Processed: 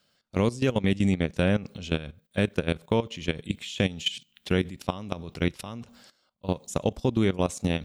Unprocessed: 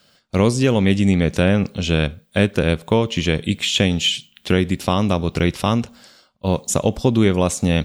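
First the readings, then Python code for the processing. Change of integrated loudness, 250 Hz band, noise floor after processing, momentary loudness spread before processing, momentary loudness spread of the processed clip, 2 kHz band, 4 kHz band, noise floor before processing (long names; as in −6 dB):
−9.0 dB, −9.0 dB, −70 dBFS, 6 LU, 9 LU, −9.0 dB, −11.0 dB, −59 dBFS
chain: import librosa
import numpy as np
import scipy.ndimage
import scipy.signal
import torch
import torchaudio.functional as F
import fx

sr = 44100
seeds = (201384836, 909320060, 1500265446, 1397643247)

y = fx.level_steps(x, sr, step_db=16)
y = y * librosa.db_to_amplitude(-5.5)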